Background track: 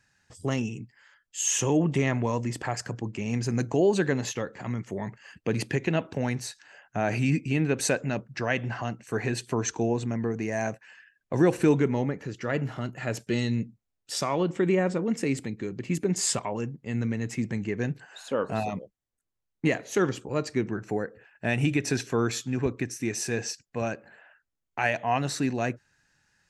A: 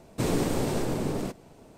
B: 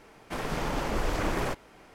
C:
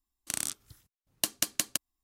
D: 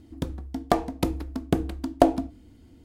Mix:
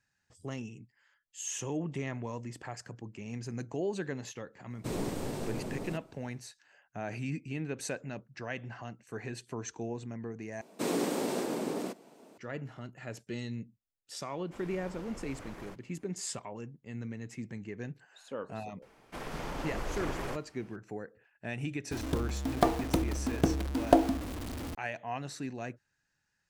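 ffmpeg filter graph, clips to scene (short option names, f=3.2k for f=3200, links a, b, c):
-filter_complex "[1:a]asplit=2[a][b];[2:a]asplit=2[c][d];[0:a]volume=-11.5dB[e];[b]highpass=f=210:w=0.5412,highpass=f=210:w=1.3066[f];[4:a]aeval=exprs='val(0)+0.5*0.0355*sgn(val(0))':c=same[g];[e]asplit=2[h][i];[h]atrim=end=10.614[j];[f]atrim=end=1.77,asetpts=PTS-STARTPTS,volume=-3dB[k];[i]atrim=start=12.376[l];[a]atrim=end=1.77,asetpts=PTS-STARTPTS,volume=-9dB,afade=t=in:d=0.1,afade=t=out:st=1.67:d=0.1,adelay=4660[m];[c]atrim=end=1.94,asetpts=PTS-STARTPTS,volume=-18dB,afade=t=in:d=0.004:c=hsin,afade=t=out:st=1.936:d=0.004:c=hsin,adelay=14210[n];[d]atrim=end=1.94,asetpts=PTS-STARTPTS,volume=-7.5dB,afade=t=in:d=0.004:c=hsin,afade=t=out:st=1.936:d=0.004:c=hsin,adelay=18820[o];[g]atrim=end=2.84,asetpts=PTS-STARTPTS,volume=-4.5dB,afade=t=in:d=0.004:c=hsin,afade=t=out:st=2.836:d=0.004:c=hsin,adelay=21910[p];[j][k]acrossfade=d=0.004:c1=hsin:c2=hsin[q];[q][l]acrossfade=d=0.004:c1=hsin:c2=hsin[r];[r][m][n][o][p]amix=inputs=5:normalize=0"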